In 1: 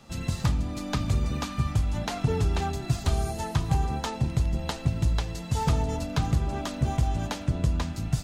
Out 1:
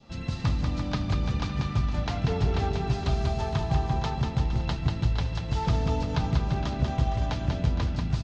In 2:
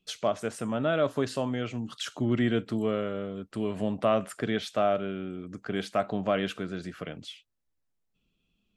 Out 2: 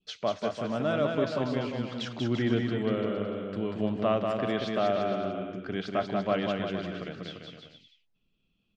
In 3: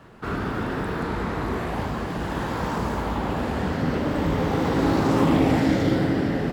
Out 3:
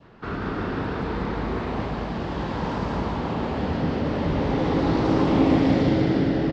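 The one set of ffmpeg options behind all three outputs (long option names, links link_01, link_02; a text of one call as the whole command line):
ffmpeg -i in.wav -filter_complex "[0:a]lowpass=frequency=5400:width=0.5412,lowpass=frequency=5400:width=1.3066,adynamicequalizer=threshold=0.01:dfrequency=1500:dqfactor=1.4:tfrequency=1500:tqfactor=1.4:attack=5:release=100:ratio=0.375:range=2:mode=cutabove:tftype=bell,asplit=2[link_01][link_02];[link_02]aecho=0:1:190|342|463.6|560.9|638.7:0.631|0.398|0.251|0.158|0.1[link_03];[link_01][link_03]amix=inputs=2:normalize=0,volume=-2dB" out.wav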